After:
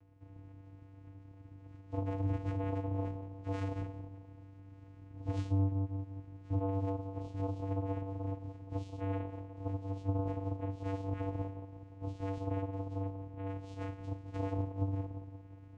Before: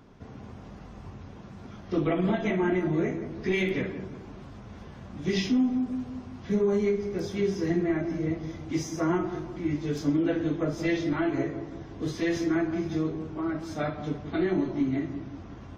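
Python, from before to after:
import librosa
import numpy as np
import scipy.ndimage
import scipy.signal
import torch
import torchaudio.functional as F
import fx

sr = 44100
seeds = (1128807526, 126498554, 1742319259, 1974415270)

y = fx.high_shelf(x, sr, hz=2200.0, db=9.5, at=(13.46, 14.62))
y = fx.vocoder(y, sr, bands=4, carrier='square', carrier_hz=97.0)
y = F.gain(torch.from_numpy(y), -8.5).numpy()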